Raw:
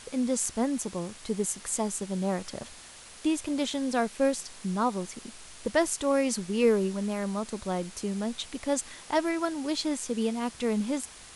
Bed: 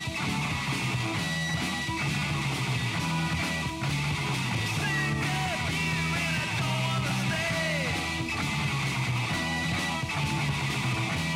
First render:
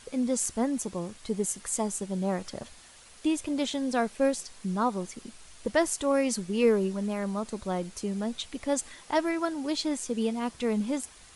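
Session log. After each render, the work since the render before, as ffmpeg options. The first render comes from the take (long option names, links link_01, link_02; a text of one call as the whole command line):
ffmpeg -i in.wav -af "afftdn=noise_reduction=6:noise_floor=-48" out.wav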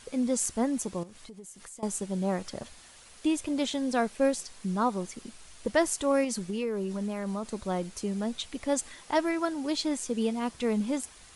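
ffmpeg -i in.wav -filter_complex "[0:a]asettb=1/sr,asplit=3[link_01][link_02][link_03];[link_01]atrim=end=1.034[link_04];[link_02]atrim=start=1.03:end=1.83,asetpts=PTS-STARTPTS,afade=type=in:duration=0.004:curve=qsin,afade=type=out:start_time=0.796:duration=0.004:curve=qsin,acompressor=threshold=-44dB:ratio=6:attack=3.2:release=140:knee=1:detection=peak[link_05];[link_03]atrim=start=1.826[link_06];[link_04][link_05]acrossfade=duration=0.004:curve1=hsin:curve2=qsin[link_07];[link_07][link_06]acrossfade=duration=0.004:curve1=qsin:curve2=hsin,asettb=1/sr,asplit=3[link_08][link_09][link_10];[link_08]atrim=end=6.244[link_11];[link_09]atrim=start=6.24:end=7.46,asetpts=PTS-STARTPTS,afade=type=in:duration=0.004:curve=qsin,afade=type=out:start_time=1.216:duration=0.004:curve=qsin,acompressor=threshold=-28dB:ratio=5:attack=3.2:release=140:knee=1:detection=peak[link_12];[link_10]atrim=start=7.456[link_13];[link_11][link_12]acrossfade=duration=0.004:curve1=hsin:curve2=qsin[link_14];[link_14][link_13]acrossfade=duration=0.004:curve1=qsin:curve2=hsin" out.wav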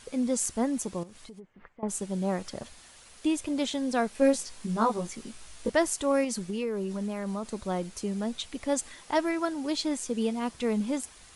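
ffmpeg -i in.wav -filter_complex "[0:a]asplit=3[link_01][link_02][link_03];[link_01]afade=type=out:start_time=1.39:duration=0.02[link_04];[link_02]lowpass=frequency=2200:width=0.5412,lowpass=frequency=2200:width=1.3066,afade=type=in:start_time=1.39:duration=0.02,afade=type=out:start_time=1.88:duration=0.02[link_05];[link_03]afade=type=in:start_time=1.88:duration=0.02[link_06];[link_04][link_05][link_06]amix=inputs=3:normalize=0,asettb=1/sr,asplit=3[link_07][link_08][link_09];[link_07]atrim=end=4.134[link_10];[link_08]atrim=start=4.13:end=5.7,asetpts=PTS-STARTPTS,afade=type=in:duration=0.004:curve=qsin,afade=type=out:start_time=1.566:duration=0.004:curve=qsin,asplit=2[link_11][link_12];[link_12]adelay=18,volume=-2.5dB[link_13];[link_11][link_13]amix=inputs=2:normalize=0,atrim=end_sample=69237[link_14];[link_09]atrim=start=5.696[link_15];[link_10][link_14]acrossfade=duration=0.004:curve1=hsin:curve2=qsin[link_16];[link_16][link_15]acrossfade=duration=0.004:curve1=qsin:curve2=hsin" out.wav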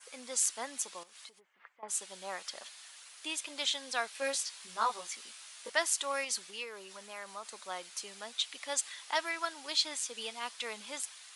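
ffmpeg -i in.wav -af "highpass=1100,adynamicequalizer=threshold=0.00316:dfrequency=3700:dqfactor=1.2:tfrequency=3700:tqfactor=1.2:attack=5:release=100:ratio=0.375:range=2.5:mode=boostabove:tftype=bell" out.wav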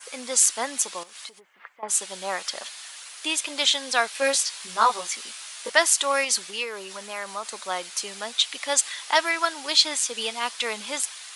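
ffmpeg -i in.wav -af "volume=11.5dB,alimiter=limit=-2dB:level=0:latency=1" out.wav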